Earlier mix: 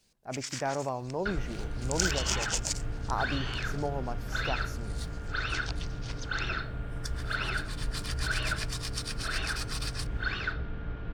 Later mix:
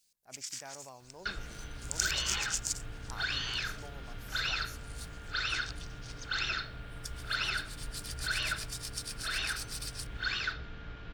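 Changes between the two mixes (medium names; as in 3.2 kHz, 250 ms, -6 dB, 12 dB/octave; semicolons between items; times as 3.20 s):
second sound +11.0 dB; master: add pre-emphasis filter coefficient 0.9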